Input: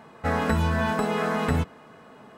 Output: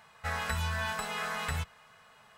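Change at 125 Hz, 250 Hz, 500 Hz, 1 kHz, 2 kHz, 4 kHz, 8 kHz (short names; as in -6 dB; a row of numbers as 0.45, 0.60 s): -10.0, -20.0, -15.0, -8.0, -4.0, -0.5, +1.0 dB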